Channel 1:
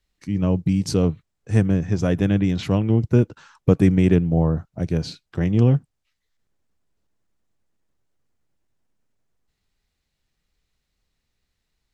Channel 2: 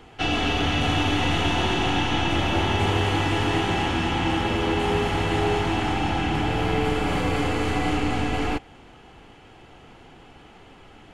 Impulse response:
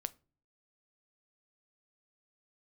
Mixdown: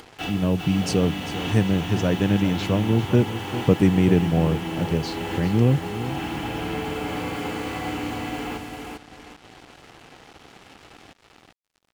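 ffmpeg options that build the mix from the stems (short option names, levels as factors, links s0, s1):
-filter_complex "[0:a]volume=0.944,asplit=3[s0][s1][s2];[s1]volume=0.224[s3];[1:a]volume=0.531,asplit=2[s4][s5];[s5]volume=0.596[s6];[s2]apad=whole_len=490847[s7];[s4][s7]sidechaincompress=threshold=0.0562:ratio=8:attack=16:release=548[s8];[s3][s6]amix=inputs=2:normalize=0,aecho=0:1:396|792|1188|1584:1|0.26|0.0676|0.0176[s9];[s0][s8][s9]amix=inputs=3:normalize=0,highpass=f=100:p=1,acompressor=mode=upward:threshold=0.0126:ratio=2.5,acrusher=bits=6:mix=0:aa=0.5"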